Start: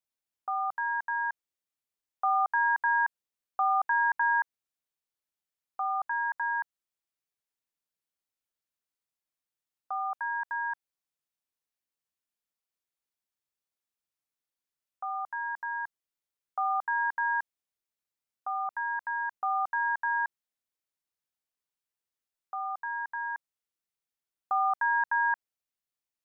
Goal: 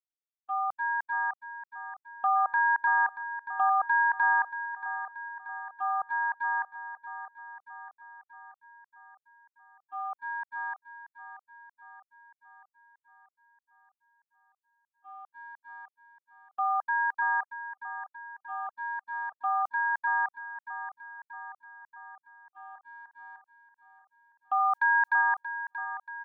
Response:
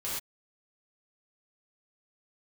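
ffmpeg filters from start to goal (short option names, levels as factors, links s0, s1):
-filter_complex "[0:a]agate=range=0.00447:threshold=0.0282:ratio=16:detection=peak,asplit=3[s0][s1][s2];[s0]afade=t=out:st=24.58:d=0.02[s3];[s1]tiltshelf=f=930:g=-6.5,afade=t=in:st=24.58:d=0.02,afade=t=out:st=25.21:d=0.02[s4];[s2]afade=t=in:st=25.21:d=0.02[s5];[s3][s4][s5]amix=inputs=3:normalize=0,aecho=1:1:631|1262|1893|2524|3155|3786|4417:0.251|0.148|0.0874|0.0516|0.0304|0.018|0.0106,volume=1.12"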